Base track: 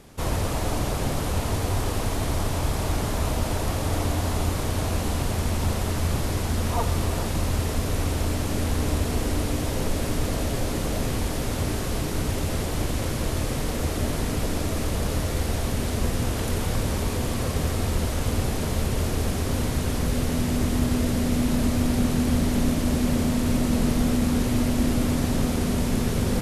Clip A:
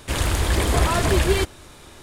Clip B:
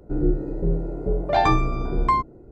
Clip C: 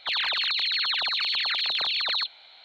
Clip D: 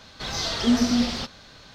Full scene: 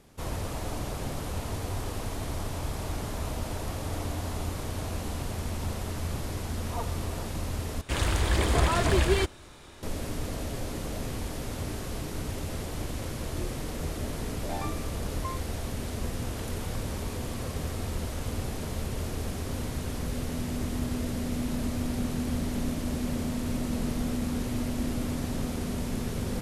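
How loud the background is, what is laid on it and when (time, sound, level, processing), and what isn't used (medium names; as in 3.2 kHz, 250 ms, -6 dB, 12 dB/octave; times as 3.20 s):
base track -8 dB
7.81 s: replace with A -4.5 dB + treble shelf 11 kHz -8 dB
13.16 s: add B -18 dB
not used: C, D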